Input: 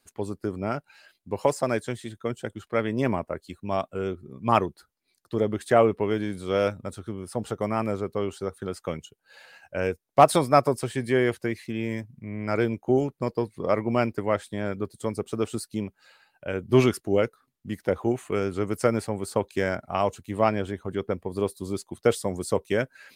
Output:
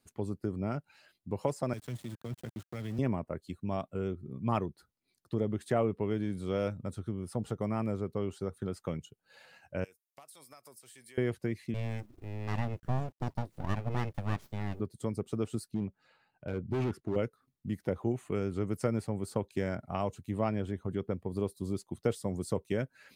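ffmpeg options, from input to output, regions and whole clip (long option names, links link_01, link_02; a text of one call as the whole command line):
ffmpeg -i in.wav -filter_complex "[0:a]asettb=1/sr,asplit=3[link_01][link_02][link_03];[link_01]atrim=end=1.734[link_04];[link_02]atrim=start=1.73:end=2.99,asetpts=PTS-STARTPTS,afade=type=in:duration=0.004:curve=qsin,afade=type=out:start_time=1.256:duration=0.004:curve=qsin,acrossover=split=120|3000[link_05][link_06][link_07];[link_06]acompressor=threshold=-36dB:ratio=6:attack=3.2:release=140:knee=2.83:detection=peak[link_08];[link_05][link_08][link_07]amix=inputs=3:normalize=0,aeval=exprs='val(0)*gte(abs(val(0)),0.00841)':channel_layout=same[link_09];[link_03]atrim=start=2.986[link_10];[link_04][link_09]acrossfade=duration=0.004:curve1=hsin:curve2=qsin[link_11];[link_11][link_10]acrossfade=duration=0.004:curve1=qsin:curve2=hsin,asettb=1/sr,asplit=3[link_12][link_13][link_14];[link_12]atrim=end=9.844[link_15];[link_13]atrim=start=9.84:end=11.18,asetpts=PTS-STARTPTS,afade=type=in:duration=0.004:curve=qsin,afade=type=out:start_time=1.336:duration=0.004:curve=qsin,aderivative,acompressor=threshold=-43dB:ratio=16:attack=3.2:release=140:knee=1:detection=peak[link_16];[link_14]atrim=start=11.176[link_17];[link_15][link_16]acrossfade=duration=0.004:curve1=hsin:curve2=qsin[link_18];[link_18][link_17]acrossfade=duration=0.004:curve1=qsin:curve2=hsin,asettb=1/sr,asplit=3[link_19][link_20][link_21];[link_19]atrim=end=11.744[link_22];[link_20]atrim=start=11.74:end=14.8,asetpts=PTS-STARTPTS,afade=type=in:duration=0.004:curve=qsin,afade=type=out:start_time=3.056:duration=0.004:curve=qsin,highpass=130,aeval=exprs='abs(val(0))':channel_layout=same,acrusher=bits=8:dc=4:mix=0:aa=0.000001[link_23];[link_21]atrim=start=14.796[link_24];[link_22][link_23]acrossfade=duration=0.004:curve1=hsin:curve2=qsin[link_25];[link_25][link_24]acrossfade=duration=0.004:curve1=qsin:curve2=hsin,asettb=1/sr,asplit=3[link_26][link_27][link_28];[link_26]atrim=end=15.714[link_29];[link_27]atrim=start=15.71:end=17.16,asetpts=PTS-STARTPTS,afade=type=in:duration=0.004:curve=qsin,afade=type=out:start_time=1.446:duration=0.004:curve=qsin,lowpass=frequency=2000:poles=1,bandreject=frequency=560:width=16,asoftclip=type=hard:threshold=-23dB[link_30];[link_28]atrim=start=17.156[link_31];[link_29][link_30]acrossfade=duration=0.004:curve1=hsin:curve2=qsin[link_32];[link_32][link_31]acrossfade=duration=0.004:curve1=qsin:curve2=hsin,equalizer=frequency=130:width=0.48:gain=10,bandreject=frequency=1600:width=29,acompressor=threshold=-28dB:ratio=1.5,volume=-7dB" out.wav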